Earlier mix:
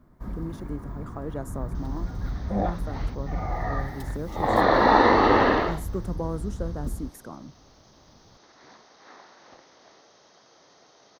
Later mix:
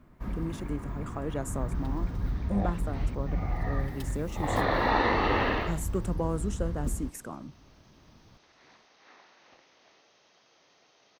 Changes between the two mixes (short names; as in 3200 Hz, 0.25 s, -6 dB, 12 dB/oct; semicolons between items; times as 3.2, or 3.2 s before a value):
speech: add bell 7800 Hz +11 dB 0.51 oct; second sound -9.0 dB; master: add bell 2600 Hz +11 dB 0.75 oct